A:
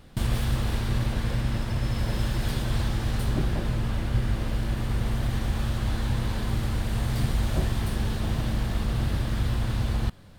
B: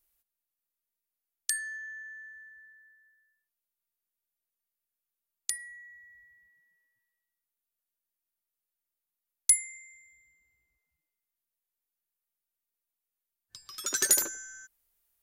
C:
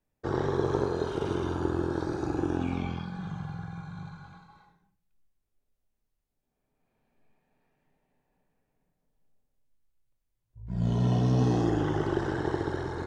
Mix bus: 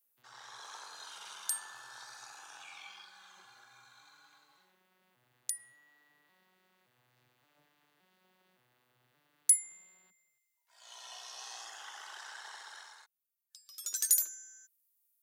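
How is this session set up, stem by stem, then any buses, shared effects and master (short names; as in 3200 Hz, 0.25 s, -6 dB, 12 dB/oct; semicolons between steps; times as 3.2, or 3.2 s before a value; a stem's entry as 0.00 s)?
-8.0 dB, 0.00 s, no send, arpeggiated vocoder minor triad, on B2, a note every 0.571 s; tone controls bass -11 dB, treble -14 dB
-4.5 dB, 0.00 s, no send, dry
-3.0 dB, 0.00 s, no send, HPF 770 Hz 24 dB/oct; AGC gain up to 8 dB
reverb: off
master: differentiator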